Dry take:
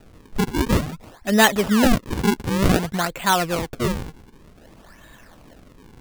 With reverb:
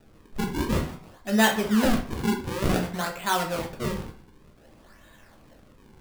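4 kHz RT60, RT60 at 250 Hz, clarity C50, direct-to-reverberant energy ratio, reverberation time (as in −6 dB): 0.35 s, 0.50 s, 9.5 dB, 1.5 dB, 0.45 s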